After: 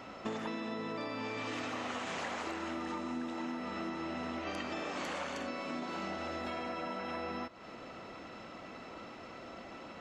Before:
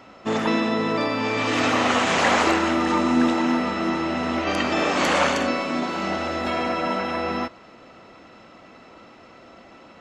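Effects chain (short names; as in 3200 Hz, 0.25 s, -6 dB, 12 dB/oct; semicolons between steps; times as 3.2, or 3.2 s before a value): compressor 12:1, threshold -35 dBFS, peak gain reduction 20 dB; gain -1 dB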